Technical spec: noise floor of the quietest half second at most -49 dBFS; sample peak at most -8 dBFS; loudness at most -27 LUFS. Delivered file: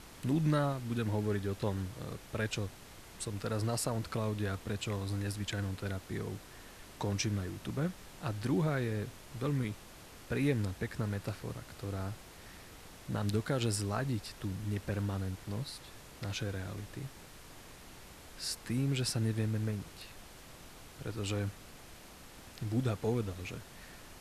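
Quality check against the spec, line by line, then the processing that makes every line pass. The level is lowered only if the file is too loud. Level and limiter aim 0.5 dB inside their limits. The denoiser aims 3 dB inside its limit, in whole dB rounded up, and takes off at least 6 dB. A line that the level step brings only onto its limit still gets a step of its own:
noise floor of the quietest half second -52 dBFS: OK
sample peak -19.0 dBFS: OK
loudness -36.0 LUFS: OK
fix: none

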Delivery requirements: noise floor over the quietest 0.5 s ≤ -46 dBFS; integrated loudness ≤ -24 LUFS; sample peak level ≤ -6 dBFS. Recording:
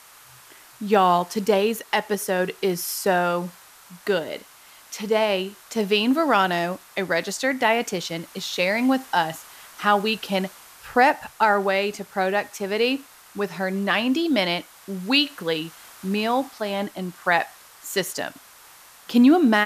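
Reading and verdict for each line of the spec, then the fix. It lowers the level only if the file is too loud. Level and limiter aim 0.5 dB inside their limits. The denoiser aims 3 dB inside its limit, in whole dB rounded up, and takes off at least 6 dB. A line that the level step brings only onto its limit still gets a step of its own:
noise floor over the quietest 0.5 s -49 dBFS: OK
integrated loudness -22.5 LUFS: fail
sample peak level -5.5 dBFS: fail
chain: gain -2 dB

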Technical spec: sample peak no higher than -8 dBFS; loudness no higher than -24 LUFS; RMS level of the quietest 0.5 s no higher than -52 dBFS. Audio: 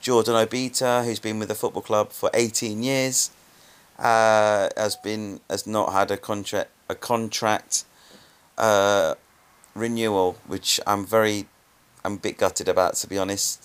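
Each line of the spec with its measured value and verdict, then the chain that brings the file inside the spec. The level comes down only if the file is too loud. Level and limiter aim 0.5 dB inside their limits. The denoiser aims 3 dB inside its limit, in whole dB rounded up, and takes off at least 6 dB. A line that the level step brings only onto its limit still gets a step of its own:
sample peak -4.5 dBFS: fail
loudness -23.0 LUFS: fail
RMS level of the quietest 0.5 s -58 dBFS: OK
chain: gain -1.5 dB; limiter -8.5 dBFS

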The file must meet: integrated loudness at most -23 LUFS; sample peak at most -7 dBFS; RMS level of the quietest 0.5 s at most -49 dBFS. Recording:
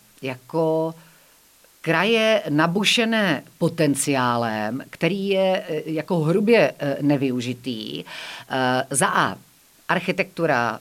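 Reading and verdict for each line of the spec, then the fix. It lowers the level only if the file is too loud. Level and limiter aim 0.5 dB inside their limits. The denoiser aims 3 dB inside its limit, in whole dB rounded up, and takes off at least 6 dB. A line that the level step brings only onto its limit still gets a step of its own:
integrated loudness -21.5 LUFS: fail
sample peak -5.0 dBFS: fail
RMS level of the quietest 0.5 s -55 dBFS: OK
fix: gain -2 dB; limiter -7.5 dBFS

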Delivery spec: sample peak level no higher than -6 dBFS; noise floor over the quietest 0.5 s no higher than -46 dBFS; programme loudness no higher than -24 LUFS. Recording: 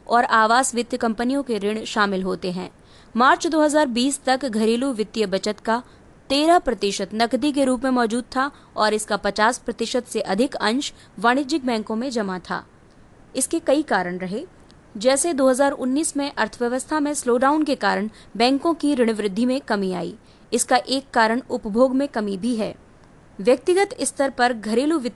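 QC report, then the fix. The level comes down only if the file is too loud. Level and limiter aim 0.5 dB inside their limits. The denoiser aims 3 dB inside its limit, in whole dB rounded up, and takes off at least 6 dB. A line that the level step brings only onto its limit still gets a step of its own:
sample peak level -5.5 dBFS: fail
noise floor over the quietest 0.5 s -50 dBFS: OK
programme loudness -21.0 LUFS: fail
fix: gain -3.5 dB

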